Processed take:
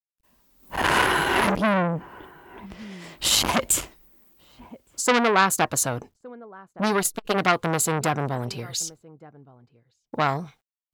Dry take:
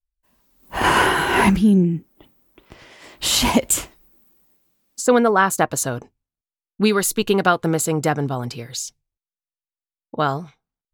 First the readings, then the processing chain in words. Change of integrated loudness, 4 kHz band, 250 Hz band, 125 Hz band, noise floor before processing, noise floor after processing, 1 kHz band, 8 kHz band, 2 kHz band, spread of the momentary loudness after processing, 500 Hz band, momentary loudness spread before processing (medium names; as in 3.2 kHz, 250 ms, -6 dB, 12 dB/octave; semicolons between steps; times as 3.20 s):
-4.0 dB, -2.0 dB, -8.0 dB, -5.5 dB, under -85 dBFS, -84 dBFS, -2.5 dB, -1.5 dB, -2.0 dB, 17 LU, -5.0 dB, 14 LU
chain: word length cut 12-bit, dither none; echo from a far wall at 200 m, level -26 dB; transformer saturation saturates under 2.3 kHz